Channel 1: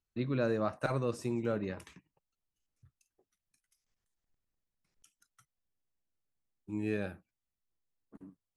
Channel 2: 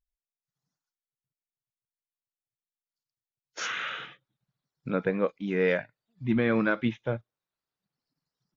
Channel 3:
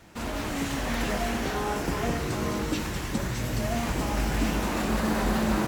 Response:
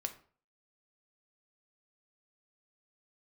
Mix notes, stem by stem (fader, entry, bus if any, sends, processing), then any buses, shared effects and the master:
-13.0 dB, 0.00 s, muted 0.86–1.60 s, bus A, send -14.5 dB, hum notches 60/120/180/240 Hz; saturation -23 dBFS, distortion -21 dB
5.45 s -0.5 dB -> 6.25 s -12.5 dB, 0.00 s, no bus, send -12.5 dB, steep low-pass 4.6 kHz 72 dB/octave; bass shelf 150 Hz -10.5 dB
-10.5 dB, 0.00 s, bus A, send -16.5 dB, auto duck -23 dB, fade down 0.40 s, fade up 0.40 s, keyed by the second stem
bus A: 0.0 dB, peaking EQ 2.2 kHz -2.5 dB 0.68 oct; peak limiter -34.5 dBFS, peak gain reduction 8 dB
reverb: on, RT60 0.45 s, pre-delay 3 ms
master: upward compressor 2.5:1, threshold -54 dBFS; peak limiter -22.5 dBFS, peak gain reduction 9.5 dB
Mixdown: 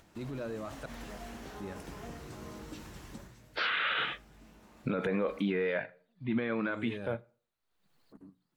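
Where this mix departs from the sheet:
stem 1 -13.0 dB -> -2.5 dB; stem 2 -0.5 dB -> +10.5 dB; stem 3 -10.5 dB -> -17.5 dB

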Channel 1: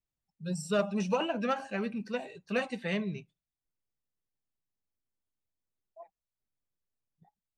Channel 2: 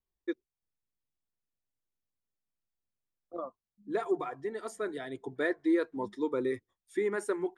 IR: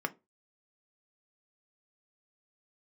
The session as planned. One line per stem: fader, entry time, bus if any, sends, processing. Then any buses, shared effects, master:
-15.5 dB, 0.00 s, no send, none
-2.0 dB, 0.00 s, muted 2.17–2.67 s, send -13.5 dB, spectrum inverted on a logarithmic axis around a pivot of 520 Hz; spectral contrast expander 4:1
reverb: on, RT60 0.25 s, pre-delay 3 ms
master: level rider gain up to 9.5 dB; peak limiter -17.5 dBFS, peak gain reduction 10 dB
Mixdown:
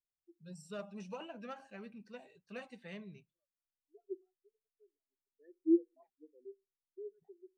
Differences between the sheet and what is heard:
stem 2: missing spectrum inverted on a logarithmic axis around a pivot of 520 Hz; master: missing level rider gain up to 9.5 dB

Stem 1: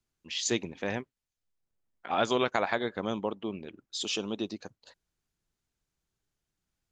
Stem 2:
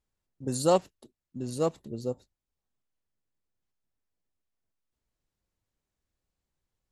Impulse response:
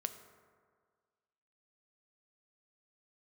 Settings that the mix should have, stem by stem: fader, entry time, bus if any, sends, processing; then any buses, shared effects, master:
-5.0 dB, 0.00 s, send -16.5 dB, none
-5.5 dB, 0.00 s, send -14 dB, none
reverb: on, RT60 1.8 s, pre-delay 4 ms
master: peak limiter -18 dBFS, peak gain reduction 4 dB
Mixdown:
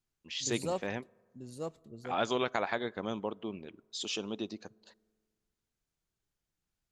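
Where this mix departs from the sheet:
stem 2 -5.5 dB -> -13.0 dB; master: missing peak limiter -18 dBFS, peak gain reduction 4 dB

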